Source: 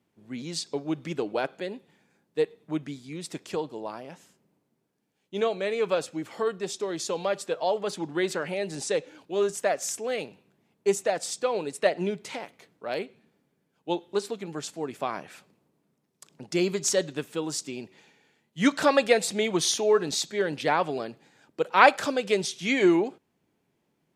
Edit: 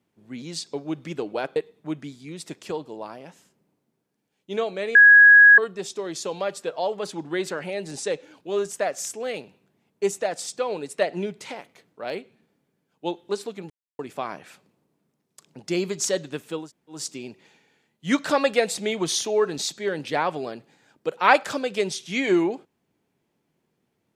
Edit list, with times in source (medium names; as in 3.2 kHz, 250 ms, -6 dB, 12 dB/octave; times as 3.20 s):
1.56–2.40 s: delete
5.79–6.42 s: bleep 1.66 kHz -7.5 dBFS
14.54–14.83 s: mute
17.48 s: insert room tone 0.31 s, crossfade 0.16 s